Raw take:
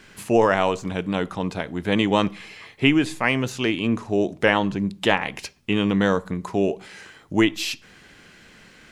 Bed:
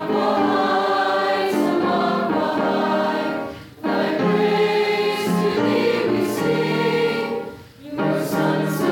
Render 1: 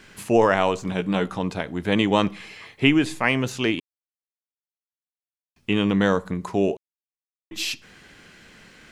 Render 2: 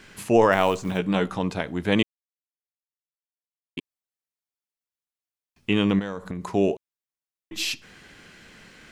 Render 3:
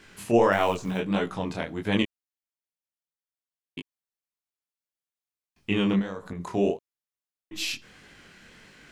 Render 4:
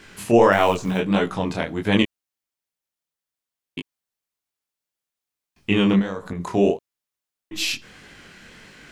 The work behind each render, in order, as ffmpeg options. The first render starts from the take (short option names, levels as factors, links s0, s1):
-filter_complex "[0:a]asettb=1/sr,asplit=3[s0][s1][s2];[s0]atrim=end=0.874[s3];[s1]atrim=start=0.87:end=1.39,asetpts=PTS-STARTPTS,afade=t=in:d=0.004:c=qsin,afade=t=out:st=0.516:d=0.004:c=qsin,asplit=2[s4][s5];[s5]adelay=16,volume=0.447[s6];[s4][s6]amix=inputs=2:normalize=0,atrim=end_sample=22932[s7];[s2]atrim=start=1.386[s8];[s3][s7]acrossfade=d=0.004:c1=hsin:c2=qsin[s9];[s9][s8]acrossfade=d=0.004:c1=qsin:c2=hsin,asplit=5[s10][s11][s12][s13][s14];[s10]atrim=end=3.8,asetpts=PTS-STARTPTS,afade=t=out:st=3.796:d=0.004:c=hsin[s15];[s11]atrim=start=3.8:end=5.56,asetpts=PTS-STARTPTS,volume=0[s16];[s12]atrim=start=5.56:end=6.77,asetpts=PTS-STARTPTS,afade=t=in:d=0.004:c=hsin,afade=t=out:st=1.206:d=0.004:c=hsin[s17];[s13]atrim=start=6.77:end=7.51,asetpts=PTS-STARTPTS,volume=0[s18];[s14]atrim=start=7.51,asetpts=PTS-STARTPTS,afade=t=in:d=0.004:c=hsin[s19];[s15][s16][s17][s18][s19]concat=n=5:v=0:a=1"
-filter_complex "[0:a]asplit=3[s0][s1][s2];[s0]afade=t=out:st=0.51:d=0.02[s3];[s1]acrusher=bits=7:mode=log:mix=0:aa=0.000001,afade=t=in:st=0.51:d=0.02,afade=t=out:st=0.97:d=0.02[s4];[s2]afade=t=in:st=0.97:d=0.02[s5];[s3][s4][s5]amix=inputs=3:normalize=0,asettb=1/sr,asplit=3[s6][s7][s8];[s6]atrim=end=5.994[s9];[s7]atrim=start=5.99:end=6.49,asetpts=PTS-STARTPTS,afade=t=in:d=0.004:c=qsin,afade=t=out:st=0.496:d=0.004:c=qsin,acompressor=threshold=0.0501:ratio=12:attack=3.2:release=140:knee=1:detection=peak[s10];[s8]atrim=start=6.486[s11];[s9][s10]acrossfade=d=0.004:c1=hsin:c2=qsin[s12];[s12][s11]acrossfade=d=0.004:c1=qsin:c2=hsin,asplit=3[s13][s14][s15];[s13]atrim=end=2.03,asetpts=PTS-STARTPTS,afade=t=out:st=2.026:d=0.004:c=hsin[s16];[s14]atrim=start=2.03:end=3.77,asetpts=PTS-STARTPTS,volume=0[s17];[s15]atrim=start=3.77,asetpts=PTS-STARTPTS,afade=t=in:d=0.004:c=hsin[s18];[s16][s17][s18]concat=n=3:v=0:a=1"
-af "flanger=delay=18.5:depth=7.7:speed=1.6"
-af "volume=2,alimiter=limit=0.708:level=0:latency=1"